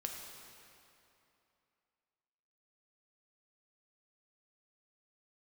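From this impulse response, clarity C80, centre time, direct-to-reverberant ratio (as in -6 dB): 3.5 dB, 90 ms, 1.0 dB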